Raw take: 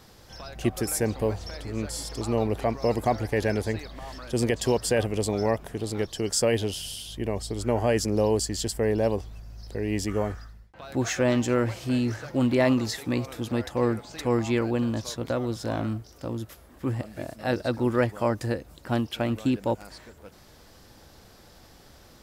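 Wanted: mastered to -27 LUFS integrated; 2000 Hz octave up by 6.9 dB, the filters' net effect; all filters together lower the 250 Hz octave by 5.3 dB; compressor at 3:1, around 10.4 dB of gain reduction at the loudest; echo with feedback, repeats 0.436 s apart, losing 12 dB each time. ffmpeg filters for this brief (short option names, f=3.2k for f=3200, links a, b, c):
-af "equalizer=f=250:t=o:g=-6.5,equalizer=f=2k:t=o:g=8.5,acompressor=threshold=-32dB:ratio=3,aecho=1:1:436|872|1308:0.251|0.0628|0.0157,volume=8dB"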